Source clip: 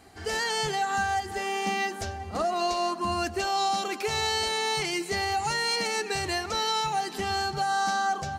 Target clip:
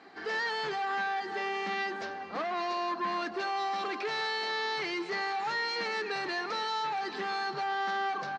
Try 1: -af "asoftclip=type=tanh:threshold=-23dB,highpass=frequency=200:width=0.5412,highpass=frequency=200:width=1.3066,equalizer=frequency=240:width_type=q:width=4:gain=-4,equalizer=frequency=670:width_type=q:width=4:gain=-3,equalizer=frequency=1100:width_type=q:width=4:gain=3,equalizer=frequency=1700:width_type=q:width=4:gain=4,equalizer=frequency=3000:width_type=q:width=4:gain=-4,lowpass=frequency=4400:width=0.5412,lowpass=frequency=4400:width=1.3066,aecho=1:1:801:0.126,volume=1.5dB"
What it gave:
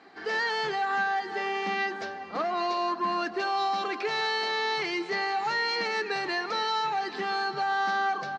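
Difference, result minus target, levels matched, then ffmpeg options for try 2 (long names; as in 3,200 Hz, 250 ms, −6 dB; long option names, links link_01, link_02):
soft clipping: distortion −8 dB
-af "asoftclip=type=tanh:threshold=-31dB,highpass=frequency=200:width=0.5412,highpass=frequency=200:width=1.3066,equalizer=frequency=240:width_type=q:width=4:gain=-4,equalizer=frequency=670:width_type=q:width=4:gain=-3,equalizer=frequency=1100:width_type=q:width=4:gain=3,equalizer=frequency=1700:width_type=q:width=4:gain=4,equalizer=frequency=3000:width_type=q:width=4:gain=-4,lowpass=frequency=4400:width=0.5412,lowpass=frequency=4400:width=1.3066,aecho=1:1:801:0.126,volume=1.5dB"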